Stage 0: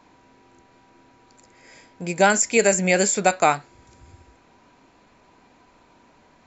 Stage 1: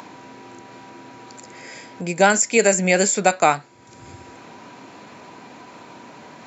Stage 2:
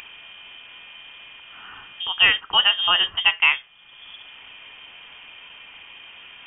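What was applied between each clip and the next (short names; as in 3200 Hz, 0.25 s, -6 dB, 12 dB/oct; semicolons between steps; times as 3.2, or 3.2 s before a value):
HPF 110 Hz 24 dB/oct; in parallel at +3 dB: upward compressor, threshold -25 dBFS; on the sum: gain -6 dB
inverted band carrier 3400 Hz; gain -1.5 dB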